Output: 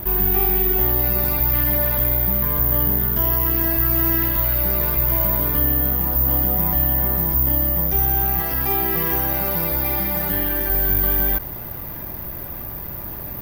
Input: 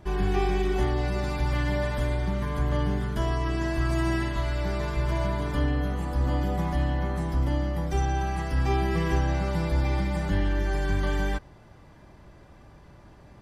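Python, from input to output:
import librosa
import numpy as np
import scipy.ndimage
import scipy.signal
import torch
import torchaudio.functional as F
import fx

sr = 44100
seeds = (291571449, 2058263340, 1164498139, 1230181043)

y = fx.low_shelf(x, sr, hz=180.0, db=-11.0, at=(8.4, 10.7))
y = (np.kron(scipy.signal.resample_poly(y, 1, 3), np.eye(3)[0]) * 3)[:len(y)]
y = fx.env_flatten(y, sr, amount_pct=50)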